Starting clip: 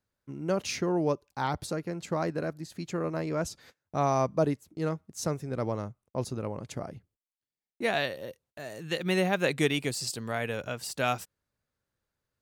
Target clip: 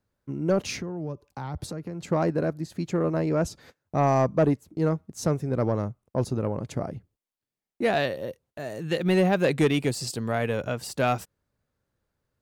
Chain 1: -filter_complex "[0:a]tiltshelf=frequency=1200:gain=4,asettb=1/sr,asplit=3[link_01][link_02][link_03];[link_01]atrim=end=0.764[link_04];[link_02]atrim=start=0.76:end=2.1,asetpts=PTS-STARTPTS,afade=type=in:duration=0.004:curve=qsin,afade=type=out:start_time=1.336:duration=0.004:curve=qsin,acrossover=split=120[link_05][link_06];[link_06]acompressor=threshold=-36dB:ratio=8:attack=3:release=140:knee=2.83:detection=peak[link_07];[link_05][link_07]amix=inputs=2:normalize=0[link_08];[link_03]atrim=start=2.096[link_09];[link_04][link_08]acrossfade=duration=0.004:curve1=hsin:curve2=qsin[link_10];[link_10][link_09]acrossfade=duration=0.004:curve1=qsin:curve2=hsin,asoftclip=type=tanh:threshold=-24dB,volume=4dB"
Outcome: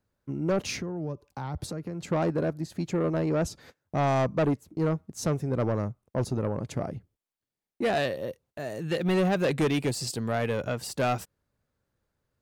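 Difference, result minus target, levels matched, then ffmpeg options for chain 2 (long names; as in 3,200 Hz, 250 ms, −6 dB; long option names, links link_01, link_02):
soft clipping: distortion +8 dB
-filter_complex "[0:a]tiltshelf=frequency=1200:gain=4,asettb=1/sr,asplit=3[link_01][link_02][link_03];[link_01]atrim=end=0.764[link_04];[link_02]atrim=start=0.76:end=2.1,asetpts=PTS-STARTPTS,afade=type=in:duration=0.004:curve=qsin,afade=type=out:start_time=1.336:duration=0.004:curve=qsin,acrossover=split=120[link_05][link_06];[link_06]acompressor=threshold=-36dB:ratio=8:attack=3:release=140:knee=2.83:detection=peak[link_07];[link_05][link_07]amix=inputs=2:normalize=0[link_08];[link_03]atrim=start=2.096[link_09];[link_04][link_08]acrossfade=duration=0.004:curve1=hsin:curve2=qsin[link_10];[link_10][link_09]acrossfade=duration=0.004:curve1=qsin:curve2=hsin,asoftclip=type=tanh:threshold=-17dB,volume=4dB"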